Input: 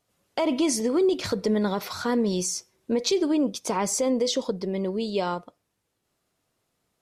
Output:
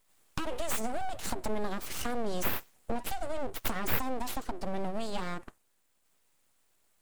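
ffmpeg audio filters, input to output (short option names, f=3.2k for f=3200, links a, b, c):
-filter_complex "[0:a]acrossover=split=160[a][b];[b]acompressor=threshold=-33dB:ratio=6[c];[a][c]amix=inputs=2:normalize=0,highshelf=f=6.4k:t=q:w=3:g=6,aeval=exprs='abs(val(0))':c=same,volume=2.5dB"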